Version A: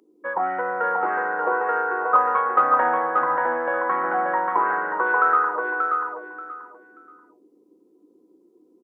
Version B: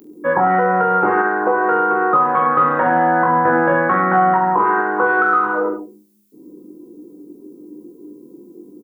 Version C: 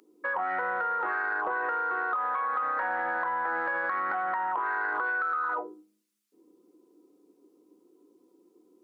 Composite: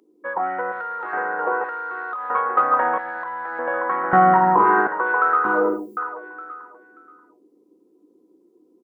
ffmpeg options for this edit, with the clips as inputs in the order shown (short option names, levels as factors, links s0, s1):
-filter_complex "[2:a]asplit=3[s0][s1][s2];[1:a]asplit=2[s3][s4];[0:a]asplit=6[s5][s6][s7][s8][s9][s10];[s5]atrim=end=0.722[s11];[s0]atrim=start=0.718:end=1.132[s12];[s6]atrim=start=1.128:end=1.642[s13];[s1]atrim=start=1.638:end=2.302[s14];[s7]atrim=start=2.298:end=2.982[s15];[s2]atrim=start=2.978:end=3.592[s16];[s8]atrim=start=3.588:end=4.132[s17];[s3]atrim=start=4.128:end=4.872[s18];[s9]atrim=start=4.868:end=5.452[s19];[s4]atrim=start=5.448:end=5.972[s20];[s10]atrim=start=5.968[s21];[s11][s12]acrossfade=d=0.004:c1=hsin:c2=hsin[s22];[s22][s13]acrossfade=d=0.004:c1=hsin:c2=hsin[s23];[s23][s14]acrossfade=d=0.004:c1=hsin:c2=hsin[s24];[s24][s15]acrossfade=d=0.004:c1=hsin:c2=hsin[s25];[s25][s16]acrossfade=d=0.004:c1=hsin:c2=hsin[s26];[s26][s17]acrossfade=d=0.004:c1=hsin:c2=hsin[s27];[s27][s18]acrossfade=d=0.004:c1=hsin:c2=hsin[s28];[s28][s19]acrossfade=d=0.004:c1=hsin:c2=hsin[s29];[s29][s20]acrossfade=d=0.004:c1=hsin:c2=hsin[s30];[s30][s21]acrossfade=d=0.004:c1=hsin:c2=hsin"